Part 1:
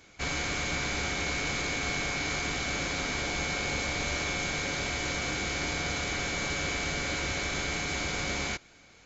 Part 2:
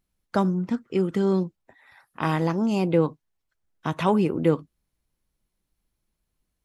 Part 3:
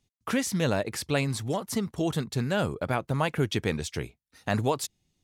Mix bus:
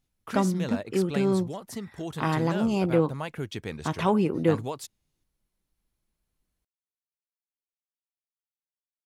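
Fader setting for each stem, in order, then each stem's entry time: muted, −2.0 dB, −7.5 dB; muted, 0.00 s, 0.00 s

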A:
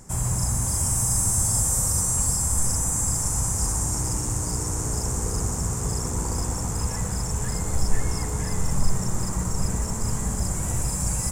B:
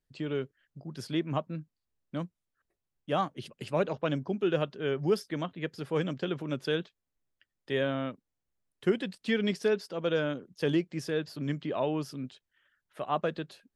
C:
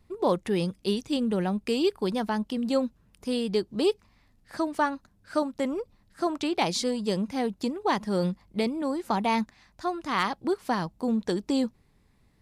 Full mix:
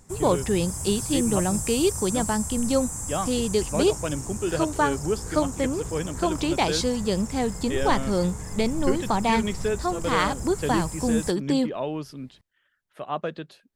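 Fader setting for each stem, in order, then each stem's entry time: −8.5, +0.5, +2.5 decibels; 0.00, 0.00, 0.00 seconds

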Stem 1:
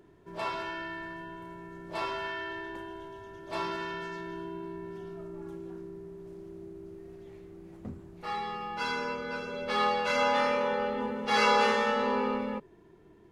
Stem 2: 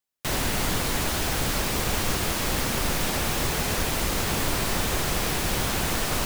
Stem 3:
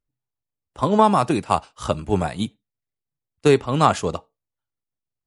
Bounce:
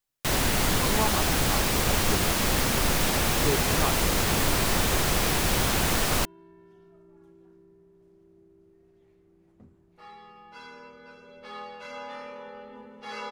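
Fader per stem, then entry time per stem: −13.0, +1.5, −14.0 decibels; 1.75, 0.00, 0.00 seconds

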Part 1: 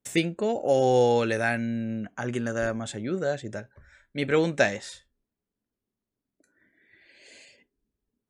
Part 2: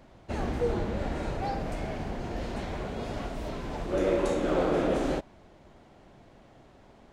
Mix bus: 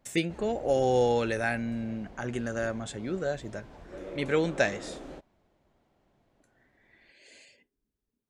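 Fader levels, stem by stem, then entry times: −3.5, −15.0 decibels; 0.00, 0.00 seconds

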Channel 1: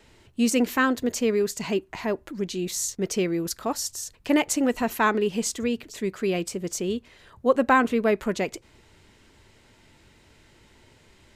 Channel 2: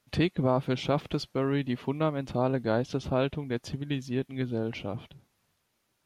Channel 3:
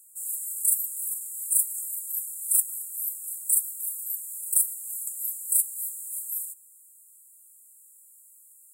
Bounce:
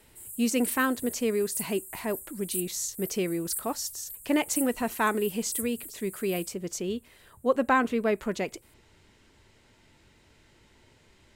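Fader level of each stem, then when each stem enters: −4.0 dB, muted, −11.0 dB; 0.00 s, muted, 0.00 s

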